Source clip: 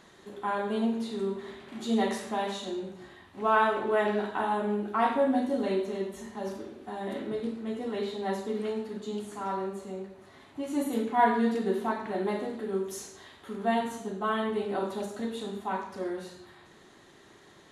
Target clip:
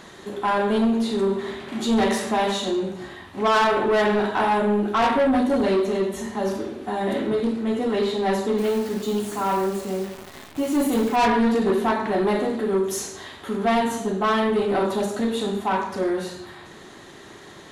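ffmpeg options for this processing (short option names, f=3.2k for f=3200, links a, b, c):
-filter_complex "[0:a]acontrast=75,asoftclip=type=tanh:threshold=-20.5dB,asettb=1/sr,asplit=3[a][b][c];[a]atrim=end=8.584[d];[b]atrim=start=8.58:end=11.16,asetpts=PTS-STARTPTS,afade=t=in:d=0.004:c=qsin,afade=t=out:st=2.576:d=0.004:c=qsin,acrusher=bits=8:dc=4:mix=0:aa=0.000001[e];[c]atrim=start=11.156[f];[d][e]acrossfade=d=0.004:c1=hsin:c2=qsin[g];[g][f]acrossfade=d=0.004:c1=qsin:c2=hsin,volume=5dB"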